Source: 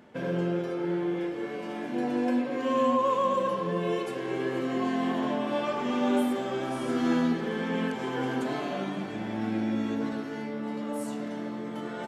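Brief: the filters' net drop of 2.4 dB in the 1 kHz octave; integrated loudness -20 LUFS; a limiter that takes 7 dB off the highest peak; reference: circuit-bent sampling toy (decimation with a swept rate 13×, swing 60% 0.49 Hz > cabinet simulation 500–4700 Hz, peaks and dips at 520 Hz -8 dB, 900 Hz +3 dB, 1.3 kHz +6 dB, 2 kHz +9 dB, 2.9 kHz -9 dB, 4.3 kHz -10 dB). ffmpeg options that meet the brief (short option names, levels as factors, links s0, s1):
-af "equalizer=f=1000:t=o:g=-5.5,alimiter=limit=0.0668:level=0:latency=1,acrusher=samples=13:mix=1:aa=0.000001:lfo=1:lforange=7.8:lforate=0.49,highpass=500,equalizer=f=520:t=q:w=4:g=-8,equalizer=f=900:t=q:w=4:g=3,equalizer=f=1300:t=q:w=4:g=6,equalizer=f=2000:t=q:w=4:g=9,equalizer=f=2900:t=q:w=4:g=-9,equalizer=f=4300:t=q:w=4:g=-10,lowpass=f=4700:w=0.5412,lowpass=f=4700:w=1.3066,volume=7.5"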